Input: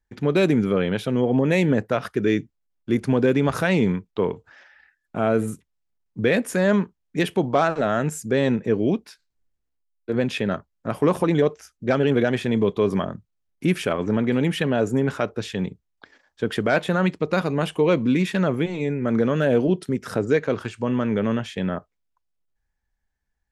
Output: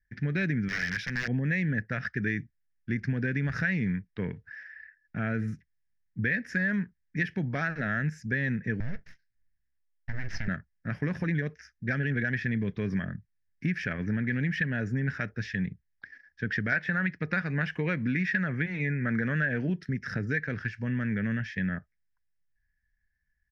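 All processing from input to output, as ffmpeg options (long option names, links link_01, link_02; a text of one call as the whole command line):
ffmpeg -i in.wav -filter_complex "[0:a]asettb=1/sr,asplit=3[link_01][link_02][link_03];[link_01]atrim=end=0.684[link_04];[link_02]atrim=start=0.68:end=1.28,asetpts=PTS-STARTPTS,afade=type=in:duration=0.004:curve=qsin,afade=type=out:start_time=0.596:duration=0.004:curve=qsin,tiltshelf=frequency=1100:gain=-7.5,aeval=exprs='(mod(10*val(0)+1,2)-1)/10':channel_layout=same,acrusher=bits=7:mode=log:mix=0:aa=0.000001[link_05];[link_03]atrim=start=1.276[link_06];[link_04][link_05]acrossfade=duration=0.004:curve1=hsin:curve2=qsin[link_07];[link_07][link_06]acrossfade=duration=0.004:curve1=qsin:curve2=hsin,asettb=1/sr,asplit=3[link_08][link_09][link_10];[link_08]atrim=end=8.804[link_11];[link_09]atrim=start=8.8:end=10.48,asetpts=PTS-STARTPTS,afade=type=in:duration=0.004:curve=qsin,afade=type=out:start_time=1.676:duration=0.004:curve=qsin,aeval=exprs='abs(val(0))':channel_layout=same,acompressor=threshold=-23dB:ratio=6:attack=3.2:release=140:knee=1:detection=peak[link_12];[link_10]atrim=start=10.476[link_13];[link_11][link_12]acrossfade=duration=0.004:curve1=hsin:curve2=qsin[link_14];[link_14][link_13]acrossfade=duration=0.004:curve1=qsin:curve2=hsin,asettb=1/sr,asplit=3[link_15][link_16][link_17];[link_15]atrim=end=16.724[link_18];[link_16]atrim=start=16.72:end=19.82,asetpts=PTS-STARTPTS,afade=type=in:duration=0.004:curve=qsin,afade=type=out:start_time=3.096:duration=0.004:curve=qsin,highpass=57,equalizer=frequency=1200:width=0.48:gain=6.5[link_19];[link_17]atrim=start=19.816[link_20];[link_18][link_19]acrossfade=duration=0.004:curve1=hsin:curve2=qsin[link_21];[link_21][link_20]acrossfade=duration=0.004:curve1=qsin:curve2=hsin,firequalizer=gain_entry='entry(150,0);entry(360,-15);entry(1100,-20);entry(1700,8);entry(3500,-27);entry(5300,-5);entry(7800,-30)':delay=0.05:min_phase=1,acompressor=threshold=-25dB:ratio=6,equalizer=frequency=3600:width_type=o:width=0.48:gain=13" out.wav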